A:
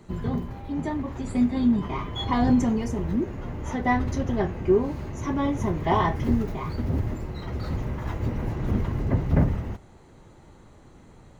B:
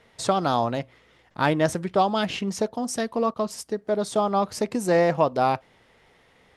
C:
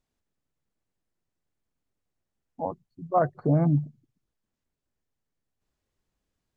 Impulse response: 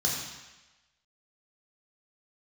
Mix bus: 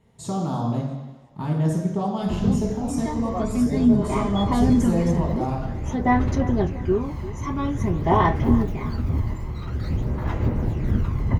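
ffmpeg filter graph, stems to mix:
-filter_complex "[0:a]aphaser=in_gain=1:out_gain=1:delay=1:decay=0.5:speed=0.49:type=sinusoidal,adelay=2200,volume=-1dB,asplit=2[a][b];[b]volume=-16dB[c];[1:a]alimiter=limit=-12.5dB:level=0:latency=1:release=167,equalizer=f=2.6k:w=0.34:g=-14.5,volume=0dB,asplit=3[d][e][f];[e]volume=-7.5dB[g];[f]volume=-23dB[h];[2:a]adelay=200,volume=-8.5dB[i];[3:a]atrim=start_sample=2205[j];[g][j]afir=irnorm=-1:irlink=0[k];[c][h]amix=inputs=2:normalize=0,aecho=0:1:342|684|1026|1368|1710:1|0.37|0.137|0.0507|0.0187[l];[a][d][i][k][l]amix=inputs=5:normalize=0"

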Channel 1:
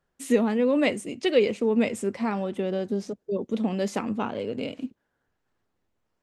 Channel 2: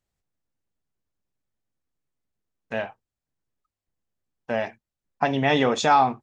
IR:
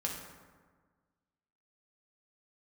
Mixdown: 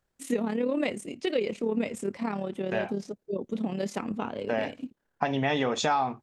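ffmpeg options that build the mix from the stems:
-filter_complex "[0:a]tremolo=f=36:d=0.621,volume=-1dB[a];[1:a]volume=-1dB[b];[a][b]amix=inputs=2:normalize=0,acompressor=threshold=-23dB:ratio=4"

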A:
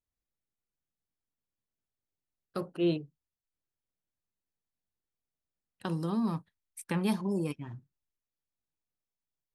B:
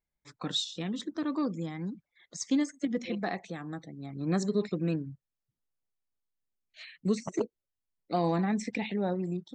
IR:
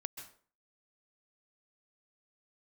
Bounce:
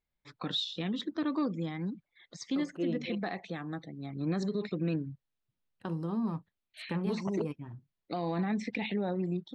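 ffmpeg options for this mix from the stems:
-filter_complex "[0:a]lowpass=f=1.5k:p=1,acontrast=53,volume=-8dB[a];[1:a]highshelf=f=5.3k:t=q:w=1.5:g=-11,volume=0.5dB[b];[a][b]amix=inputs=2:normalize=0,alimiter=limit=-24dB:level=0:latency=1:release=54"

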